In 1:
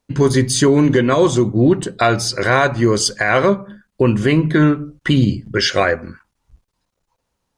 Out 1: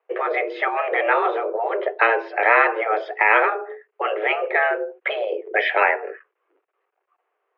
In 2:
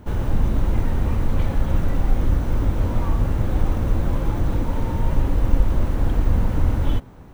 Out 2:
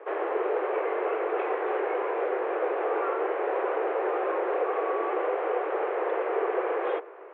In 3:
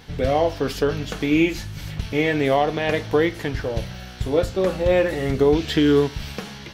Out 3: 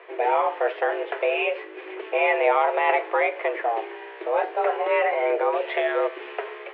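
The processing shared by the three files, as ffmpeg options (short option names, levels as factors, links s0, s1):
-af "afftfilt=real='re*lt(hypot(re,im),0.891)':imag='im*lt(hypot(re,im),0.891)':win_size=1024:overlap=0.75,highpass=f=170:t=q:w=0.5412,highpass=f=170:t=q:w=1.307,lowpass=f=2400:t=q:w=0.5176,lowpass=f=2400:t=q:w=0.7071,lowpass=f=2400:t=q:w=1.932,afreqshift=220,volume=1.33"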